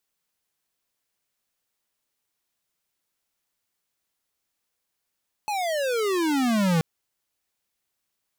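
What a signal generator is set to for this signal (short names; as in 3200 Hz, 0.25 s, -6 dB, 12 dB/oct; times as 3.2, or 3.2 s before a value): gliding synth tone square, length 1.33 s, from 864 Hz, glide -29.5 st, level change +6.5 dB, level -20.5 dB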